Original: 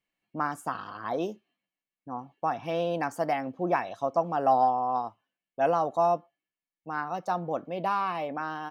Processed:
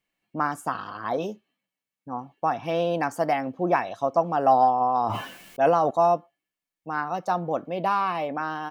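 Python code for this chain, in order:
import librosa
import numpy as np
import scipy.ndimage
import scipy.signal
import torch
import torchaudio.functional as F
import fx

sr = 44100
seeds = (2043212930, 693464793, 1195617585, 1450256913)

y = fx.notch_comb(x, sr, f0_hz=350.0, at=(1.17, 2.13))
y = fx.sustainer(y, sr, db_per_s=28.0, at=(4.8, 5.89), fade=0.02)
y = y * 10.0 ** (4.0 / 20.0)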